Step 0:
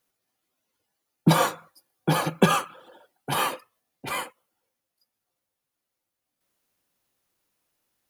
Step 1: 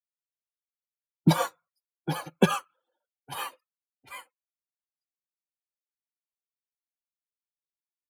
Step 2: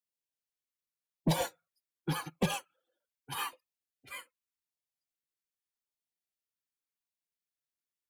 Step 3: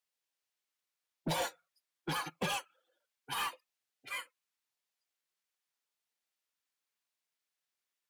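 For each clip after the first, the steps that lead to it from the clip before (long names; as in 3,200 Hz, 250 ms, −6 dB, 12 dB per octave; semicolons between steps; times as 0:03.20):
spectral dynamics exaggerated over time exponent 1.5; expander for the loud parts 1.5 to 1, over −41 dBFS
soft clipping −22.5 dBFS, distortion −5 dB; auto-filter notch saw down 0.85 Hz 530–1,500 Hz
mid-hump overdrive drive 19 dB, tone 5,600 Hz, clips at −20.5 dBFS; level −6 dB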